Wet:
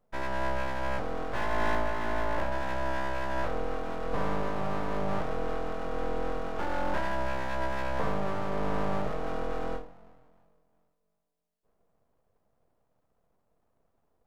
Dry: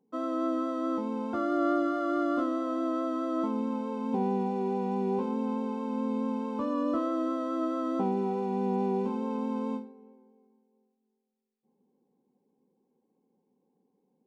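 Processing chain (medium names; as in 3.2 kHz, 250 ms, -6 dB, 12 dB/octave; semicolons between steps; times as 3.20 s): 1.75–2.52 s: low-pass 1.3 kHz; full-wave rectifier; trim +2 dB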